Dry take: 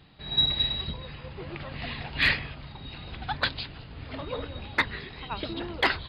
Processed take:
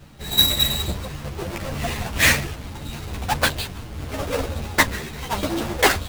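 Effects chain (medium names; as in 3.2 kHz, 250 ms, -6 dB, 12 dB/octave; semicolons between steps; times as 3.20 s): square wave that keeps the level; dynamic bell 590 Hz, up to +4 dB, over -43 dBFS, Q 2.6; three-phase chorus; trim +7 dB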